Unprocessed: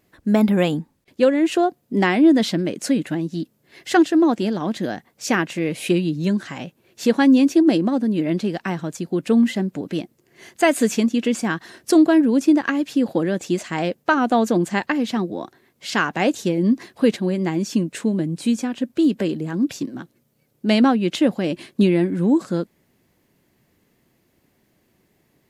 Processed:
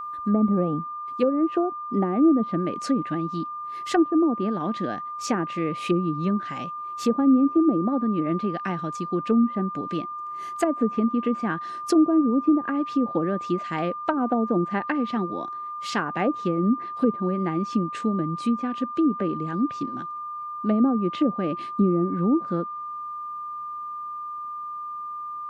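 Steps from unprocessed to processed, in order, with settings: treble ducked by the level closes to 500 Hz, closed at -13 dBFS; whine 1200 Hz -27 dBFS; gain -4 dB

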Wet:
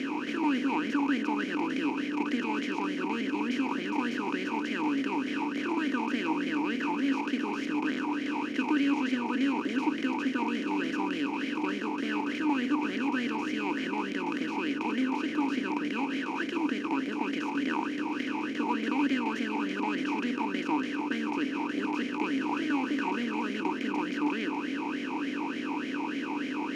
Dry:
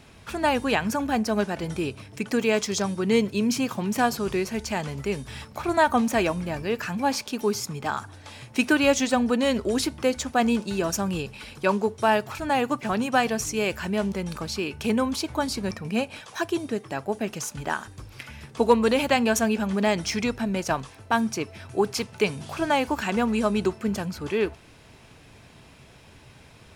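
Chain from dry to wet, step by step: per-bin compression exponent 0.2; vowel sweep i-u 3.4 Hz; gain -5 dB

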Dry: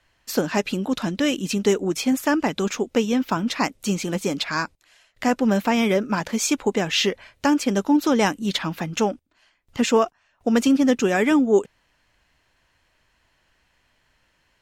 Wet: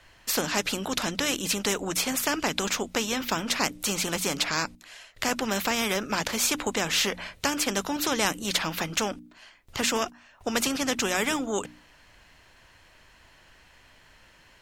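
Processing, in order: notches 60/120/180/240/300 Hz; spectral compressor 2:1

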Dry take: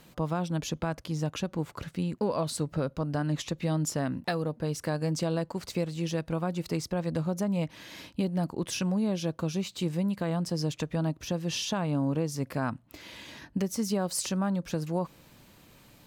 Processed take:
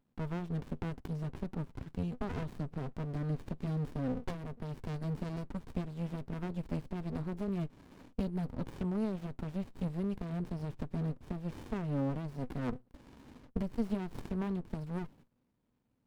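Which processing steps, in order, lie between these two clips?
gate -50 dBFS, range -16 dB; thirty-one-band EQ 250 Hz +11 dB, 1000 Hz +5 dB, 6300 Hz -11 dB; running maximum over 65 samples; gain -6.5 dB

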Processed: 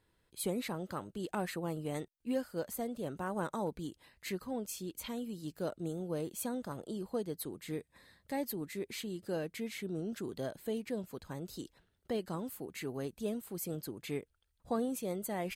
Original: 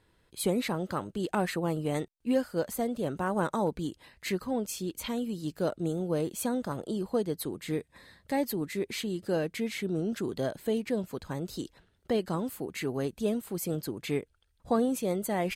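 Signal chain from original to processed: high shelf 10000 Hz +6.5 dB; gain -7.5 dB

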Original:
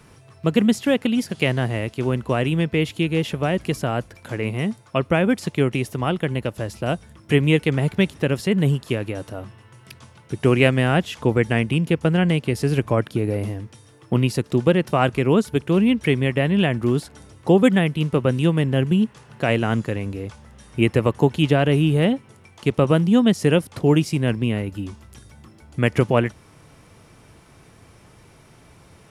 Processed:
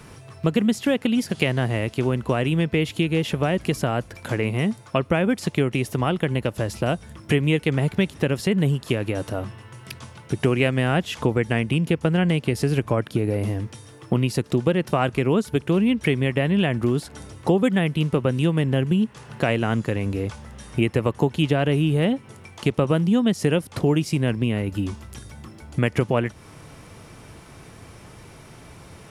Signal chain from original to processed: compressor 2.5:1, threshold -26 dBFS, peak gain reduction 11 dB; gain +5.5 dB

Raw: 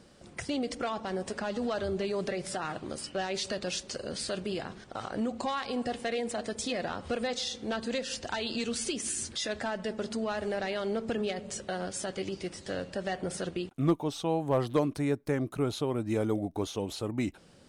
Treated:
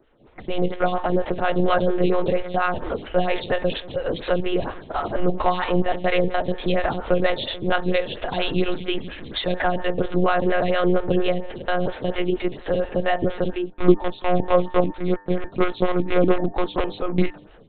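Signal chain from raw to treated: in parallel at -5.5 dB: bit-crush 4-bit; on the sum: monotone LPC vocoder at 8 kHz 180 Hz; AGC gain up to 16 dB; de-hum 100 Hz, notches 18; photocell phaser 4.3 Hz

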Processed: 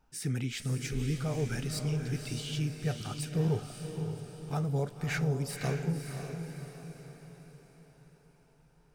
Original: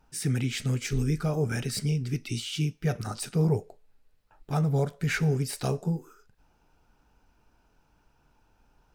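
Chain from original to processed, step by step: diffused feedback echo 0.557 s, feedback 47%, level -6.5 dB; gain -5.5 dB

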